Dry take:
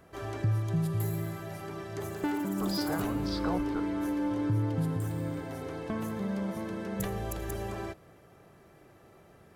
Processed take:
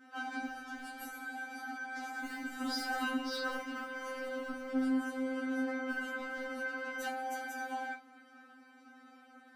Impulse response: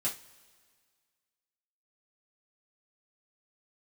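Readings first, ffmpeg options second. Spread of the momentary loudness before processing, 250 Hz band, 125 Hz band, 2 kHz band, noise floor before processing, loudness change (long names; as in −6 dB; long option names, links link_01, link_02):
9 LU, −6.0 dB, below −35 dB, +7.0 dB, −58 dBFS, −5.0 dB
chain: -filter_complex "[0:a]highpass=150,lowpass=3600,asplit=2[link_01][link_02];[link_02]aeval=exprs='0.0376*(abs(mod(val(0)/0.0376+3,4)-2)-1)':channel_layout=same,volume=-4.5dB[link_03];[link_01][link_03]amix=inputs=2:normalize=0,crystalizer=i=1.5:c=0[link_04];[1:a]atrim=start_sample=2205,atrim=end_sample=3528[link_05];[link_04][link_05]afir=irnorm=-1:irlink=0,afftfilt=real='re*3.46*eq(mod(b,12),0)':imag='im*3.46*eq(mod(b,12),0)':win_size=2048:overlap=0.75,volume=-3dB"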